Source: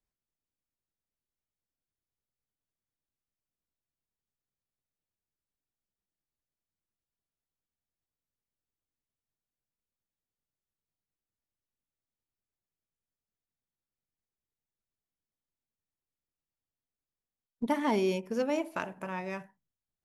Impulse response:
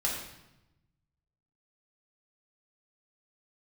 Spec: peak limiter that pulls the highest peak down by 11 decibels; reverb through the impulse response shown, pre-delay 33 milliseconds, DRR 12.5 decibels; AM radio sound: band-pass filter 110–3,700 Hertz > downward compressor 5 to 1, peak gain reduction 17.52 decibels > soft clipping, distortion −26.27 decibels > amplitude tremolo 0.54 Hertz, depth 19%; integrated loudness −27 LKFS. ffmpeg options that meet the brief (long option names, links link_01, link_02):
-filter_complex "[0:a]alimiter=level_in=3dB:limit=-24dB:level=0:latency=1,volume=-3dB,asplit=2[link_01][link_02];[1:a]atrim=start_sample=2205,adelay=33[link_03];[link_02][link_03]afir=irnorm=-1:irlink=0,volume=-19dB[link_04];[link_01][link_04]amix=inputs=2:normalize=0,highpass=110,lowpass=3700,acompressor=threshold=-51dB:ratio=5,asoftclip=threshold=-38.5dB,tremolo=f=0.54:d=0.19,volume=27.5dB"